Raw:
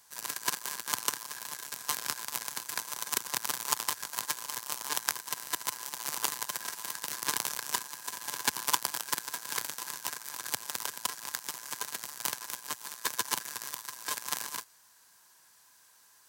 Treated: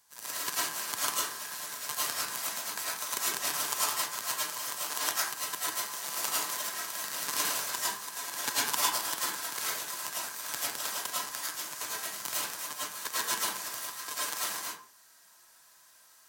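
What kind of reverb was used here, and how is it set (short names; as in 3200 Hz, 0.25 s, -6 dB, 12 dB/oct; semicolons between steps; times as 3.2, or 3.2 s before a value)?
digital reverb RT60 0.44 s, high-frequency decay 0.65×, pre-delay 65 ms, DRR -8.5 dB; gain -6 dB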